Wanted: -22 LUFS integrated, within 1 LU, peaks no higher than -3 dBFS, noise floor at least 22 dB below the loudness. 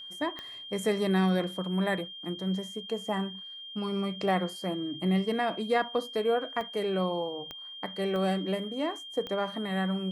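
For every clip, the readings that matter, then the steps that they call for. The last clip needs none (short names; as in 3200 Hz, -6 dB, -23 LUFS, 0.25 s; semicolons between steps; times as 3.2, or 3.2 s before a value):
clicks 5; steady tone 3200 Hz; tone level -41 dBFS; loudness -31.0 LUFS; peak -14.5 dBFS; loudness target -22.0 LUFS
-> de-click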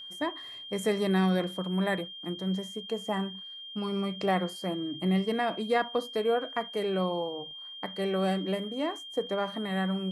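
clicks 0; steady tone 3200 Hz; tone level -41 dBFS
-> notch 3200 Hz, Q 30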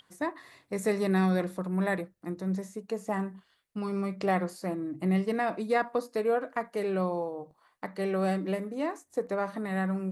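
steady tone none; loudness -31.0 LUFS; peak -14.5 dBFS; loudness target -22.0 LUFS
-> gain +9 dB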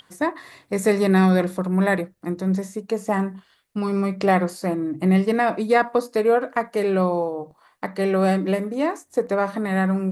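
loudness -22.0 LUFS; peak -5.5 dBFS; noise floor -61 dBFS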